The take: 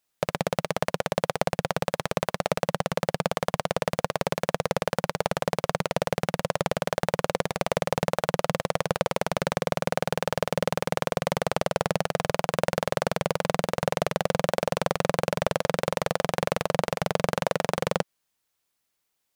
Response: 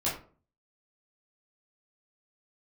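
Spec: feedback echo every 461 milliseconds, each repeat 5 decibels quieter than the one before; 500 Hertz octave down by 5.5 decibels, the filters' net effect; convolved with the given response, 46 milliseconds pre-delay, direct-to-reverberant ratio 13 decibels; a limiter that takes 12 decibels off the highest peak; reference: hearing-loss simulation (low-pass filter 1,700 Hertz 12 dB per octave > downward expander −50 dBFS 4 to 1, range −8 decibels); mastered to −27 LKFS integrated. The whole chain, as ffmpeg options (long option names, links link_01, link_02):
-filter_complex "[0:a]equalizer=frequency=500:width_type=o:gain=-6.5,alimiter=limit=-17dB:level=0:latency=1,aecho=1:1:461|922|1383|1844|2305|2766|3227:0.562|0.315|0.176|0.0988|0.0553|0.031|0.0173,asplit=2[link_01][link_02];[1:a]atrim=start_sample=2205,adelay=46[link_03];[link_02][link_03]afir=irnorm=-1:irlink=0,volume=-20.5dB[link_04];[link_01][link_04]amix=inputs=2:normalize=0,lowpass=1700,agate=range=-8dB:threshold=-50dB:ratio=4,volume=12dB"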